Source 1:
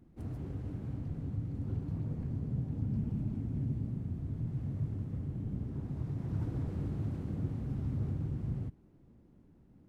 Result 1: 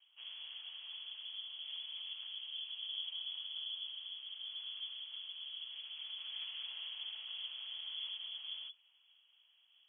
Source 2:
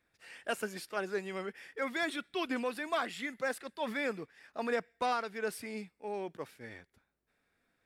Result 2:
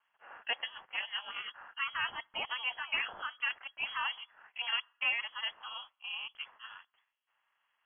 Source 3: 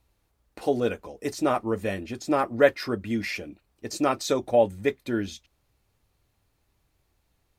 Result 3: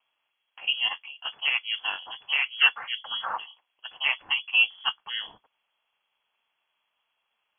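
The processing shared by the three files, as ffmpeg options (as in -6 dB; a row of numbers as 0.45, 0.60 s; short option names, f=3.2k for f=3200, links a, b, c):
-filter_complex "[0:a]highpass=60,aeval=exprs='val(0)*sin(2*PI*120*n/s)':c=same,equalizer=f=100:t=o:w=0.67:g=8,equalizer=f=630:t=o:w=0.67:g=9,equalizer=f=2.5k:t=o:w=0.67:g=10,acrossover=split=690|2600[a][b][c];[b]aeval=exprs='0.447*sin(PI/2*1.58*val(0)/0.447)':c=same[d];[a][d][c]amix=inputs=3:normalize=0,lowpass=f=2.9k:t=q:w=0.5098,lowpass=f=2.9k:t=q:w=0.6013,lowpass=f=2.9k:t=q:w=0.9,lowpass=f=2.9k:t=q:w=2.563,afreqshift=-3400,volume=-8dB"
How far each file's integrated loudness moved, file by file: -5.0, +0.5, +0.5 LU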